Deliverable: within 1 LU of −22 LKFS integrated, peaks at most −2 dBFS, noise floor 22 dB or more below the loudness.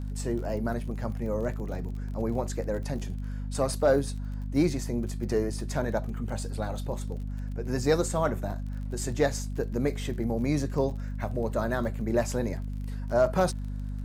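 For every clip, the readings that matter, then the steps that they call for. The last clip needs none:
crackle rate 28 per second; mains hum 50 Hz; hum harmonics up to 250 Hz; level of the hum −31 dBFS; integrated loudness −30.0 LKFS; sample peak −11.5 dBFS; target loudness −22.0 LKFS
→ click removal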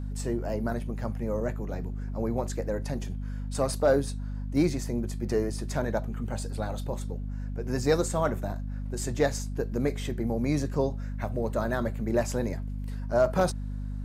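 crackle rate 0.14 per second; mains hum 50 Hz; hum harmonics up to 250 Hz; level of the hum −31 dBFS
→ mains-hum notches 50/100/150/200/250 Hz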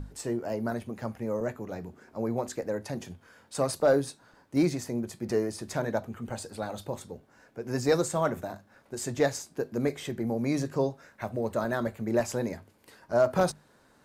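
mains hum none found; integrated loudness −30.5 LKFS; sample peak −12.5 dBFS; target loudness −22.0 LKFS
→ level +8.5 dB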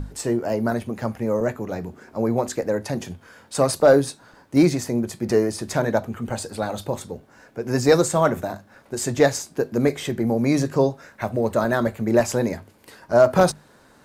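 integrated loudness −22.0 LKFS; sample peak −4.0 dBFS; background noise floor −54 dBFS

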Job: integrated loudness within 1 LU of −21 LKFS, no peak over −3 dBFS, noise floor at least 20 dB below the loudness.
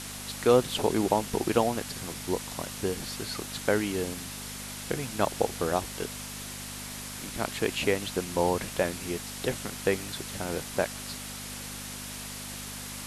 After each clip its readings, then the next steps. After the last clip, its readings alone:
mains hum 50 Hz; hum harmonics up to 250 Hz; level of the hum −42 dBFS; background noise floor −40 dBFS; target noise floor −51 dBFS; integrated loudness −30.5 LKFS; sample peak −8.5 dBFS; target loudness −21.0 LKFS
→ hum removal 50 Hz, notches 5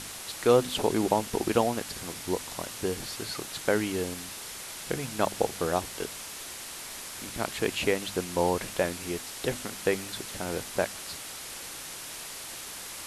mains hum none found; background noise floor −41 dBFS; target noise floor −51 dBFS
→ broadband denoise 10 dB, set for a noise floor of −41 dBFS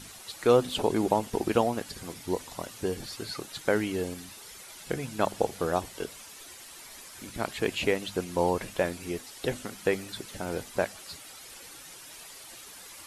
background noise floor −47 dBFS; target noise floor −51 dBFS
→ broadband denoise 6 dB, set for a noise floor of −47 dBFS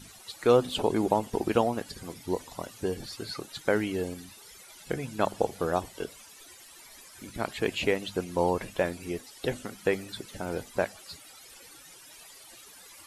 background noise floor −51 dBFS; integrated loudness −30.5 LKFS; sample peak −9.0 dBFS; target loudness −21.0 LKFS
→ level +9.5 dB
brickwall limiter −3 dBFS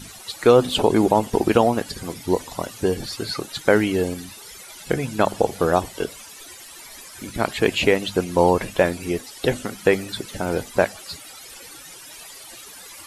integrated loudness −21.5 LKFS; sample peak −3.0 dBFS; background noise floor −42 dBFS

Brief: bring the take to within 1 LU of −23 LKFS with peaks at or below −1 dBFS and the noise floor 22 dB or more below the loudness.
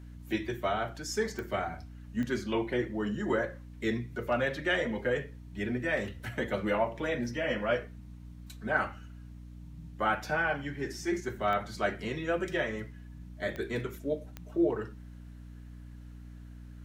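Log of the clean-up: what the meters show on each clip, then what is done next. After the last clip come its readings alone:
number of clicks 5; mains hum 60 Hz; hum harmonics up to 300 Hz; level of the hum −44 dBFS; integrated loudness −32.5 LKFS; sample peak −14.0 dBFS; target loudness −23.0 LKFS
→ click removal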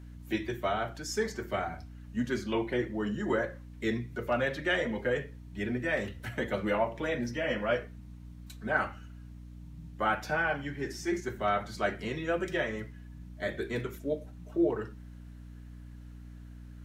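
number of clicks 0; mains hum 60 Hz; hum harmonics up to 300 Hz; level of the hum −44 dBFS
→ hum removal 60 Hz, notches 5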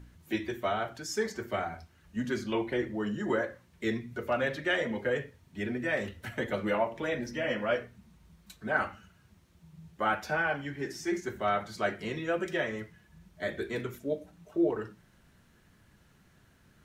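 mains hum none found; integrated loudness −33.0 LKFS; sample peak −14.0 dBFS; target loudness −23.0 LKFS
→ level +10 dB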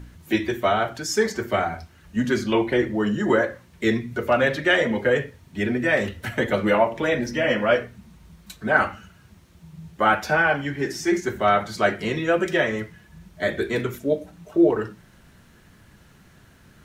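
integrated loudness −23.0 LKFS; sample peak −4.0 dBFS; background noise floor −53 dBFS

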